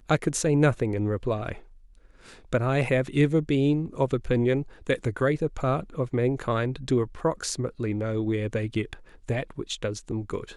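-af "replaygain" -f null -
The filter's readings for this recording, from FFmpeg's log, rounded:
track_gain = +6.7 dB
track_peak = 0.232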